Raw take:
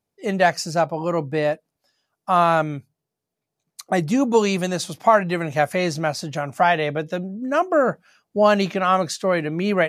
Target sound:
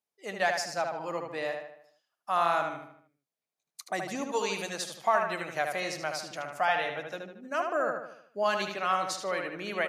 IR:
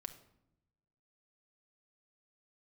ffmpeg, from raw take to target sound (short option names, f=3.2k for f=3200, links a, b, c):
-filter_complex "[0:a]highpass=f=960:p=1,asplit=2[a][b];[b]adelay=76,lowpass=f=4.2k:p=1,volume=-4.5dB,asplit=2[c][d];[d]adelay=76,lowpass=f=4.2k:p=1,volume=0.48,asplit=2[e][f];[f]adelay=76,lowpass=f=4.2k:p=1,volume=0.48,asplit=2[g][h];[h]adelay=76,lowpass=f=4.2k:p=1,volume=0.48,asplit=2[i][j];[j]adelay=76,lowpass=f=4.2k:p=1,volume=0.48,asplit=2[k][l];[l]adelay=76,lowpass=f=4.2k:p=1,volume=0.48[m];[c][e][g][i][k][m]amix=inputs=6:normalize=0[n];[a][n]amix=inputs=2:normalize=0,volume=-7dB"